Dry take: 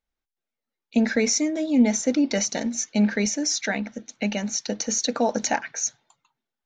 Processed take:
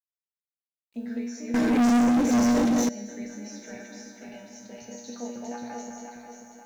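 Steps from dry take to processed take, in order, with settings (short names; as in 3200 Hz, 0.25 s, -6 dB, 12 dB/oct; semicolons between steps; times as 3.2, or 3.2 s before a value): regenerating reverse delay 0.268 s, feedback 63%, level 0 dB; tilt shelf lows +4 dB, about 1200 Hz; notches 50/100/150/200 Hz; resonator 120 Hz, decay 0.65 s, harmonics all, mix 90%; narrowing echo 0.208 s, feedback 64%, band-pass 1100 Hz, level -5 dB; 1.54–2.89 sample leveller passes 5; bit-crush 10-bit; gain -7.5 dB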